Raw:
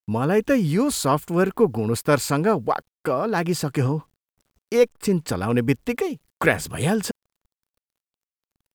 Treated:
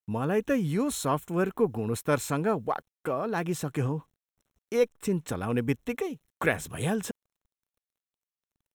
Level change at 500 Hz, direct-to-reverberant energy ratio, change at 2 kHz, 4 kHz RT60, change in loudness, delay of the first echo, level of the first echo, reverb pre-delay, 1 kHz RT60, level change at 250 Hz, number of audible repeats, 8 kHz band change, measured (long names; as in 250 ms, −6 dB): −7.0 dB, no reverb audible, −7.0 dB, no reverb audible, −7.0 dB, no echo audible, no echo audible, no reverb audible, no reverb audible, −7.0 dB, no echo audible, −7.0 dB